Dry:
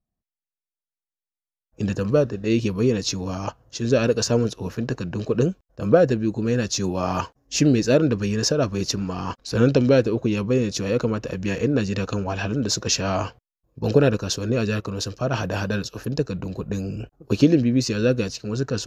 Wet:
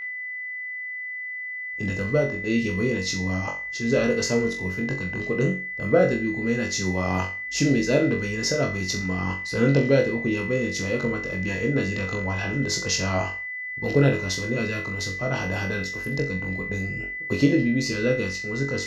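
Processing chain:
steady tone 2,000 Hz −28 dBFS
flutter between parallel walls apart 3.7 metres, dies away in 0.34 s
level −5 dB

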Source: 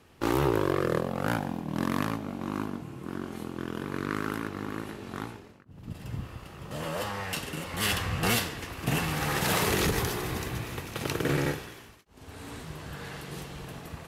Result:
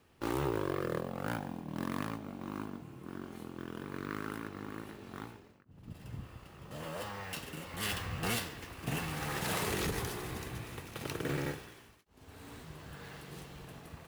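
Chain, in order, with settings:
bad sample-rate conversion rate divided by 2×, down none, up hold
level −8 dB

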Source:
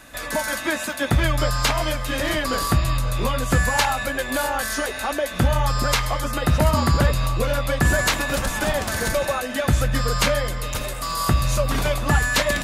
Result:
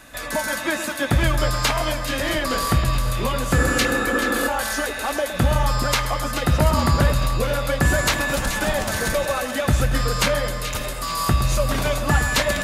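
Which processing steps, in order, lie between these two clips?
echo with a time of its own for lows and highs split 1,700 Hz, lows 114 ms, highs 430 ms, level −10 dB
healed spectral selection 0:03.60–0:04.45, 210–1,800 Hz before

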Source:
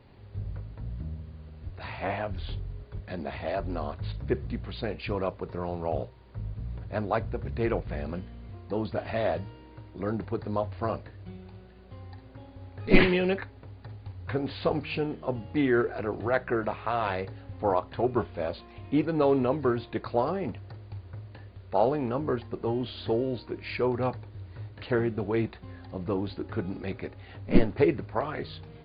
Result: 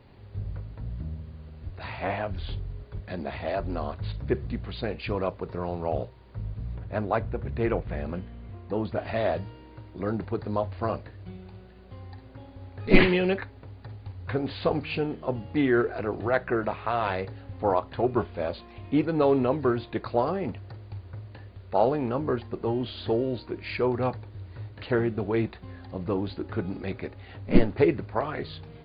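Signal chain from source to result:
0:06.75–0:09.02: low-pass filter 3,600 Hz 12 dB per octave
level +1.5 dB

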